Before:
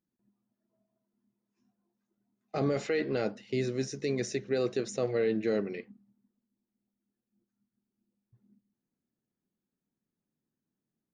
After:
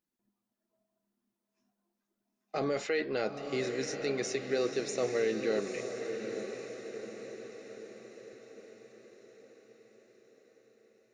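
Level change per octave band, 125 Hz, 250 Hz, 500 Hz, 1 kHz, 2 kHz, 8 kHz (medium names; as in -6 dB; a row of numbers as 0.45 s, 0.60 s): -8.5 dB, -3.5 dB, -0.5 dB, +1.5 dB, +2.5 dB, +2.5 dB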